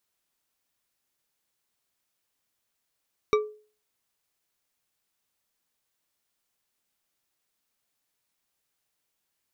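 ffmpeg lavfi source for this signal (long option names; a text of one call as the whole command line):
ffmpeg -f lavfi -i "aevalsrc='0.158*pow(10,-3*t/0.4)*sin(2*PI*425*t)+0.0891*pow(10,-3*t/0.197)*sin(2*PI*1171.7*t)+0.0501*pow(10,-3*t/0.123)*sin(2*PI*2296.7*t)+0.0282*pow(10,-3*t/0.086)*sin(2*PI*3796.5*t)+0.0158*pow(10,-3*t/0.065)*sin(2*PI*5669.5*t)':duration=0.89:sample_rate=44100" out.wav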